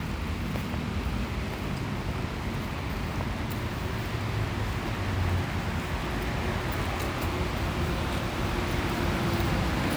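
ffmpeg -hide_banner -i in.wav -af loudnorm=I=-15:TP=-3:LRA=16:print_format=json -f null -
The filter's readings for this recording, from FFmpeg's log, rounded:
"input_i" : "-30.1",
"input_tp" : "-14.8",
"input_lra" : "3.4",
"input_thresh" : "-40.1",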